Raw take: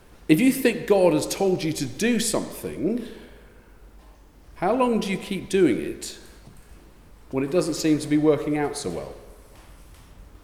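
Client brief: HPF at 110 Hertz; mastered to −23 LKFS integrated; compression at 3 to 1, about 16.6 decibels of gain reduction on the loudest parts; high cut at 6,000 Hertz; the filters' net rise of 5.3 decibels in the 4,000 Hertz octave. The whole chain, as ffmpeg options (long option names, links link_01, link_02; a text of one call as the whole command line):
ffmpeg -i in.wav -af "highpass=110,lowpass=6000,equalizer=frequency=4000:width_type=o:gain=7.5,acompressor=threshold=-36dB:ratio=3,volume=13dB" out.wav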